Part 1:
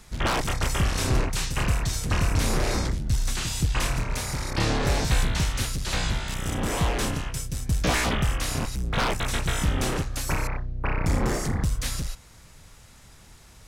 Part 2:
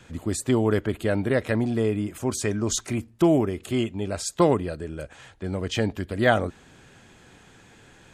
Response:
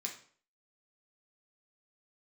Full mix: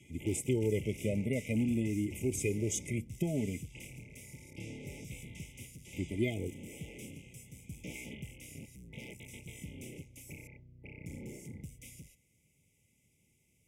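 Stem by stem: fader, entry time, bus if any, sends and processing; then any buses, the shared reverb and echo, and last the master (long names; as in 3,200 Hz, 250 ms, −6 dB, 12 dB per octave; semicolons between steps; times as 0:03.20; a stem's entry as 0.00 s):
−15.5 dB, 0.00 s, no send, no processing
+1.5 dB, 0.00 s, muted 0:03.63–0:05.93, no send, downward compressor, threshold −19 dBFS, peak gain reduction 6 dB; flanger whose copies keep moving one way rising 0.49 Hz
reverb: not used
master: brick-wall band-stop 890–2,000 Hz; high-pass filter 120 Hz 12 dB per octave; phaser with its sweep stopped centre 1,800 Hz, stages 4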